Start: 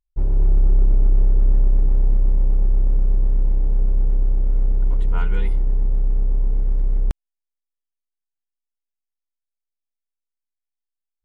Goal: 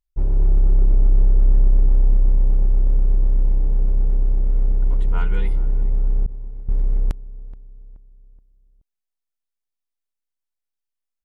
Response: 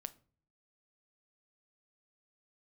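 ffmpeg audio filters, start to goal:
-filter_complex "[0:a]asplit=2[a][b];[b]adelay=426,lowpass=f=1.2k:p=1,volume=-18dB,asplit=2[c][d];[d]adelay=426,lowpass=f=1.2k:p=1,volume=0.45,asplit=2[e][f];[f]adelay=426,lowpass=f=1.2k:p=1,volume=0.45,asplit=2[g][h];[h]adelay=426,lowpass=f=1.2k:p=1,volume=0.45[i];[c][e][g][i]amix=inputs=4:normalize=0[j];[a][j]amix=inputs=2:normalize=0,asettb=1/sr,asplit=3[k][l][m];[k]atrim=end=6.264[n];[l]atrim=start=6.26:end=6.69,asetpts=PTS-STARTPTS,afade=t=in:d=0.004:c=qsin,afade=t=out:st=0.426:d=0.004:c=qsin,agate=range=-33dB:threshold=-7dB:ratio=3:detection=peak[o];[m]atrim=start=6.686[p];[n][o]acrossfade=d=0.004:c1=hsin:c2=qsin[q];[q][p]acrossfade=d=0.004:c1=qsin:c2=hsin"

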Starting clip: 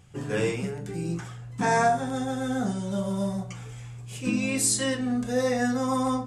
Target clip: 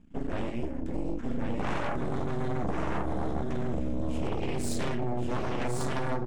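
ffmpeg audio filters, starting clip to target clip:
-af "lowpass=11k,bass=f=250:g=15,treble=f=4k:g=-10,acompressor=threshold=-24dB:ratio=5,aecho=1:1:1093:0.668,aeval=exprs='0.2*(cos(1*acos(clip(val(0)/0.2,-1,1)))-cos(1*PI/2))+0.0631*(cos(3*acos(clip(val(0)/0.2,-1,1)))-cos(3*PI/2))+0.0891*(cos(6*acos(clip(val(0)/0.2,-1,1)))-cos(6*PI/2))':c=same,volume=-8.5dB"

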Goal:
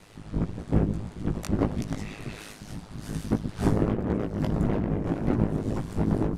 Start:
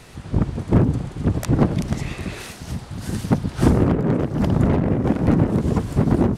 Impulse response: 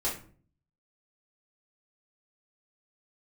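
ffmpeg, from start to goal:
-af "flanger=delay=16:depth=3.5:speed=1.7,aeval=exprs='val(0)*sin(2*PI*52*n/s)':c=same,volume=-2dB"

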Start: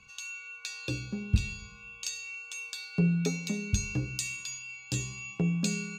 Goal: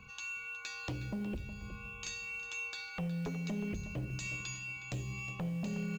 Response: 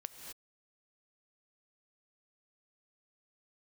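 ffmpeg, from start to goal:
-filter_complex "[0:a]equalizer=f=6.1k:t=o:w=2.5:g=-14,acompressor=threshold=-41dB:ratio=4,aresample=16000,aeval=exprs='0.0355*sin(PI/2*2.51*val(0)/0.0355)':c=same,aresample=44100,acrusher=bits=8:mode=log:mix=0:aa=0.000001,asplit=2[a][b];[b]adelay=364,lowpass=f=3.5k:p=1,volume=-11.5dB,asplit=2[c][d];[d]adelay=364,lowpass=f=3.5k:p=1,volume=0.28,asplit=2[e][f];[f]adelay=364,lowpass=f=3.5k:p=1,volume=0.28[g];[a][c][e][g]amix=inputs=4:normalize=0[h];[1:a]atrim=start_sample=2205,atrim=end_sample=3969[i];[h][i]afir=irnorm=-1:irlink=0"

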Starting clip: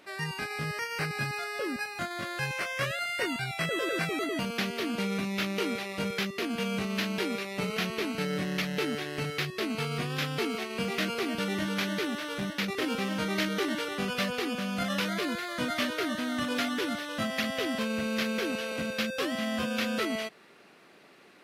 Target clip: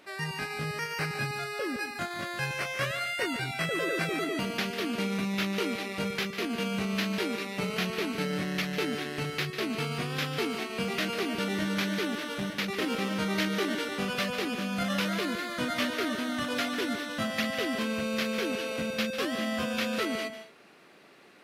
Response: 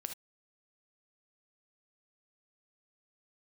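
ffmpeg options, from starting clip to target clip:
-filter_complex "[0:a]asplit=2[a][b];[1:a]atrim=start_sample=2205,adelay=147[c];[b][c]afir=irnorm=-1:irlink=0,volume=-9dB[d];[a][d]amix=inputs=2:normalize=0"

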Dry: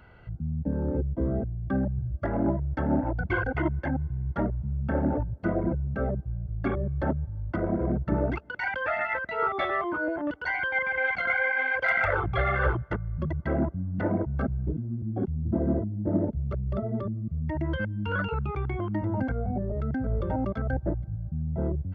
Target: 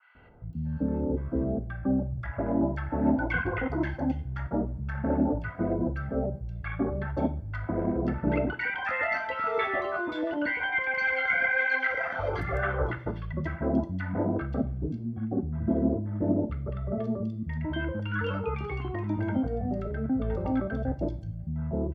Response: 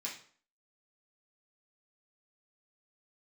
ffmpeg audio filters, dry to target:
-filter_complex "[0:a]asettb=1/sr,asplit=3[a][b][c];[a]atrim=end=11.874[d];[b]atrim=start=11.87:end=12.63,asetpts=PTS-STARTPTS,afade=t=in:d=0.004:c=qsin,afade=t=out:st=0.756:d=0.004:c=qsin,equalizer=f=3.8k:t=o:w=2.3:g=-14[e];[c]atrim=start=12.626[f];[d][e]acrossfade=d=0.004:c1=hsin:c2=qsin[g];[g][f]acrossfade=d=0.004:c1=qsin:c2=hsin,acrossover=split=1100|3700[h][i][j];[h]adelay=150[k];[j]adelay=530[l];[k][i][l]amix=inputs=3:normalize=0,asplit=2[m][n];[1:a]atrim=start_sample=2205[o];[n][o]afir=irnorm=-1:irlink=0,volume=-4dB[p];[m][p]amix=inputs=2:normalize=0,adynamicequalizer=threshold=0.01:dfrequency=1800:dqfactor=0.7:tfrequency=1800:tqfactor=0.7:attack=5:release=100:ratio=0.375:range=1.5:mode=boostabove:tftype=highshelf,volume=-1dB"

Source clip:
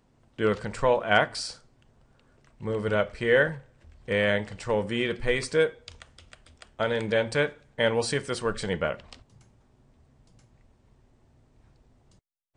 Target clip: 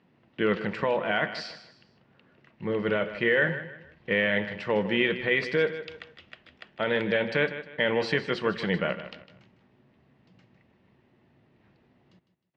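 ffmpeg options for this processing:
-af "alimiter=limit=-17dB:level=0:latency=1:release=15,highpass=140,equalizer=f=180:t=q:w=4:g=8,equalizer=f=340:t=q:w=4:g=4,equalizer=f=1.9k:t=q:w=4:g=7,equalizer=f=2.7k:t=q:w=4:g=6,lowpass=f=4.3k:w=0.5412,lowpass=f=4.3k:w=1.3066,aecho=1:1:155|310|465:0.237|0.0783|0.0258"

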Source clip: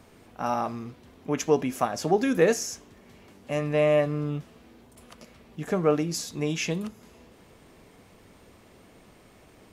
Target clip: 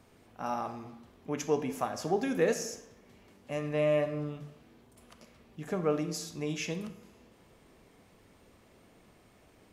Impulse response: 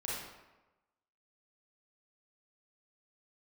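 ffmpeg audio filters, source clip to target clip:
-filter_complex "[0:a]asplit=2[a][b];[1:a]atrim=start_sample=2205,asetrate=52920,aresample=44100[c];[b][c]afir=irnorm=-1:irlink=0,volume=-8dB[d];[a][d]amix=inputs=2:normalize=0,volume=-8.5dB"

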